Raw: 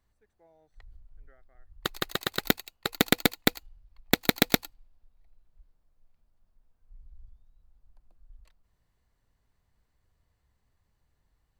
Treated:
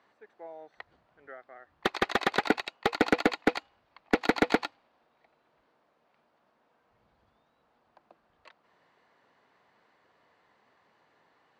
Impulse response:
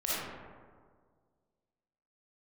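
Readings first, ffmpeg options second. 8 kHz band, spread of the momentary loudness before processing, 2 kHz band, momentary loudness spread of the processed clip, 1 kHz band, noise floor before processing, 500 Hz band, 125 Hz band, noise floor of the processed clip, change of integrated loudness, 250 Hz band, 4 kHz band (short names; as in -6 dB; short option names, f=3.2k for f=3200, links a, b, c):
-12.5 dB, 10 LU, +1.0 dB, 21 LU, +5.0 dB, -75 dBFS, +3.5 dB, -7.0 dB, -72 dBFS, -1.5 dB, 0.0 dB, -6.5 dB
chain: -filter_complex "[0:a]acrossover=split=3600[a][b];[b]acompressor=threshold=-34dB:ratio=4:attack=1:release=60[c];[a][c]amix=inputs=2:normalize=0,highpass=220,lowpass=4.7k,asplit=2[d][e];[e]highpass=f=720:p=1,volume=31dB,asoftclip=type=tanh:threshold=-5dB[f];[d][f]amix=inputs=2:normalize=0,lowpass=f=1.3k:p=1,volume=-6dB,volume=-3.5dB"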